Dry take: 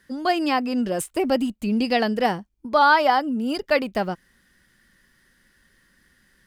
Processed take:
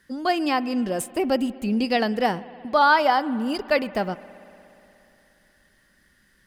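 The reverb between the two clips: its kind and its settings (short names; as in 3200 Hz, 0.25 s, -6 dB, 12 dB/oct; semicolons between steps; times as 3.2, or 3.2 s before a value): spring tank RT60 3.1 s, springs 59 ms, chirp 70 ms, DRR 17.5 dB; gain -1 dB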